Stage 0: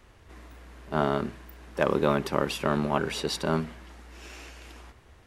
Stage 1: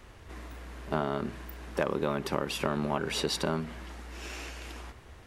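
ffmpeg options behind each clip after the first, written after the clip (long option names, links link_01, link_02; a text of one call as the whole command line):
ffmpeg -i in.wav -af "acompressor=threshold=-30dB:ratio=5,volume=4dB" out.wav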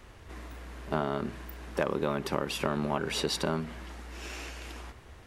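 ffmpeg -i in.wav -af anull out.wav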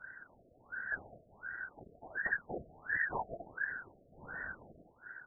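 ffmpeg -i in.wav -af "afftfilt=real='real(if(lt(b,272),68*(eq(floor(b/68),0)*2+eq(floor(b/68),1)*0+eq(floor(b/68),2)*3+eq(floor(b/68),3)*1)+mod(b,68),b),0)':imag='imag(if(lt(b,272),68*(eq(floor(b/68),0)*2+eq(floor(b/68),1)*0+eq(floor(b/68),2)*3+eq(floor(b/68),3)*1)+mod(b,68),b),0)':win_size=2048:overlap=0.75,afftfilt=real='hypot(re,im)*cos(2*PI*random(0))':imag='hypot(re,im)*sin(2*PI*random(1))':win_size=512:overlap=0.75,afftfilt=real='re*lt(b*sr/1024,690*pow(2000/690,0.5+0.5*sin(2*PI*1.4*pts/sr)))':imag='im*lt(b*sr/1024,690*pow(2000/690,0.5+0.5*sin(2*PI*1.4*pts/sr)))':win_size=1024:overlap=0.75,volume=7.5dB" out.wav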